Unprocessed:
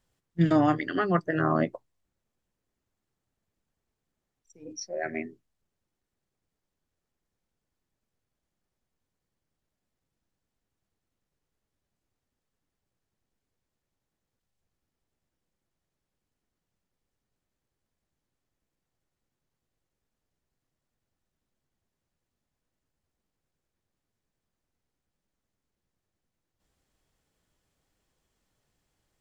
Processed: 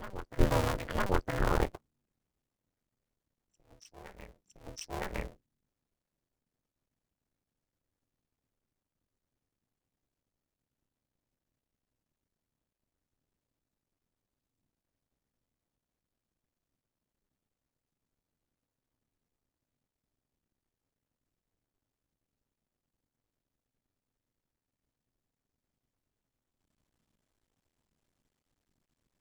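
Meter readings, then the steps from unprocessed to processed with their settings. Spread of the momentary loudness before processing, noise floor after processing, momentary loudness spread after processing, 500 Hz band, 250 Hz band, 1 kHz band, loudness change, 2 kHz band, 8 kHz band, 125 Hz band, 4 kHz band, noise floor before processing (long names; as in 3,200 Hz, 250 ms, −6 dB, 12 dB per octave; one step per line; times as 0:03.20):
18 LU, below −85 dBFS, 22 LU, −5.0 dB, −11.0 dB, −5.5 dB, −6.5 dB, −5.0 dB, can't be measured, −4.0 dB, 0.0 dB, below −85 dBFS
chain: sub-harmonics by changed cycles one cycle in 2, muted
asymmetric clip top −17.5 dBFS
on a send: backwards echo 961 ms −13 dB
on the sum: ring modulation 190 Hz
low-shelf EQ 66 Hz +11.5 dB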